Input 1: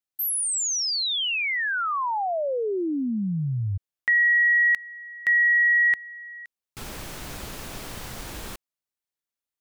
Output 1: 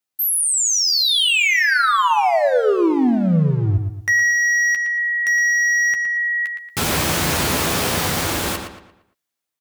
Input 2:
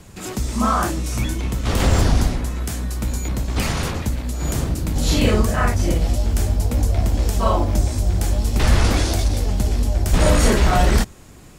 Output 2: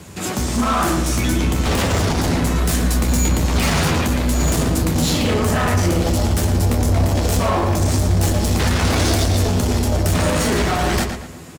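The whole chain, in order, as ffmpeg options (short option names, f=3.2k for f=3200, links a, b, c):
-filter_complex "[0:a]highpass=88,dynaudnorm=f=410:g=9:m=14dB,alimiter=limit=-11.5dB:level=0:latency=1:release=18,acompressor=threshold=-20dB:ratio=12:attack=10:release=46:knee=1:detection=rms,asoftclip=type=hard:threshold=-22.5dB,asplit=2[a][b];[b]adelay=12,volume=-8dB[c];[a][c]amix=inputs=2:normalize=0,asplit=2[d][e];[e]adelay=115,lowpass=f=4.1k:p=1,volume=-6dB,asplit=2[f][g];[g]adelay=115,lowpass=f=4.1k:p=1,volume=0.39,asplit=2[h][i];[i]adelay=115,lowpass=f=4.1k:p=1,volume=0.39,asplit=2[j][k];[k]adelay=115,lowpass=f=4.1k:p=1,volume=0.39,asplit=2[l][m];[m]adelay=115,lowpass=f=4.1k:p=1,volume=0.39[n];[d][f][h][j][l][n]amix=inputs=6:normalize=0,volume=6dB"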